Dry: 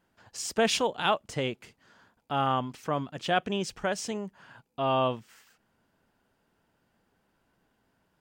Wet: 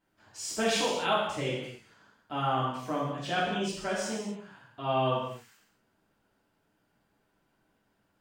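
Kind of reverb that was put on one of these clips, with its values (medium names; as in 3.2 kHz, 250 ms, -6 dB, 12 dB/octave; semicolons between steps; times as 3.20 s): gated-style reverb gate 310 ms falling, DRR -7.5 dB; trim -9 dB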